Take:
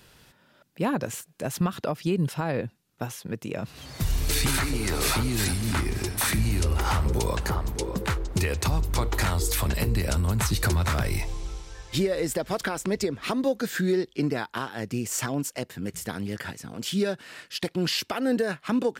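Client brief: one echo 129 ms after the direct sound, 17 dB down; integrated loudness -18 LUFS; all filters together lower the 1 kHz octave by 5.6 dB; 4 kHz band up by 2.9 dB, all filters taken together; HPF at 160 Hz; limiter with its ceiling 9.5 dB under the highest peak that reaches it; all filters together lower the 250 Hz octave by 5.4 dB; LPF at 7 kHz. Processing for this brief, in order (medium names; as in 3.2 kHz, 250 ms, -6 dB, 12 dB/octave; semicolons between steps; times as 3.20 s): high-pass 160 Hz; low-pass 7 kHz; peaking EQ 250 Hz -5.5 dB; peaking EQ 1 kHz -7.5 dB; peaking EQ 4 kHz +4.5 dB; peak limiter -23 dBFS; delay 129 ms -17 dB; trim +16 dB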